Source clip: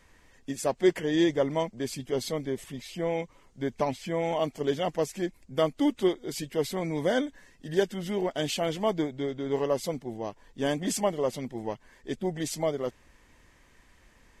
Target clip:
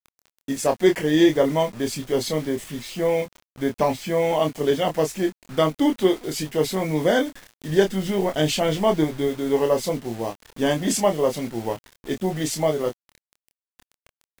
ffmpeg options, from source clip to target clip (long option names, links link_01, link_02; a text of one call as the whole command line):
ffmpeg -i in.wav -filter_complex "[0:a]asettb=1/sr,asplit=3[link_01][link_02][link_03];[link_01]atrim=end=7.704[link_04];[link_02]atrim=start=7.7:end=9.28,asetpts=PTS-STARTPTS,afade=type=in:duration=0.004:curve=qsin,afade=type=out:start_time=1.576:duration=0.004:curve=qsin,lowshelf=frequency=110:gain=8[link_05];[link_03]atrim=start=9.276[link_06];[link_04][link_05]acrossfade=duration=0.004:curve1=hsin:curve2=qsin[link_07];[link_07][link_06]acrossfade=duration=0.004:curve1=qsin:curve2=hsin,acrusher=bits=7:mix=0:aa=0.000001,asplit=2[link_08][link_09];[link_09]adelay=26,volume=-6dB[link_10];[link_08][link_10]amix=inputs=2:normalize=0,volume=6dB" out.wav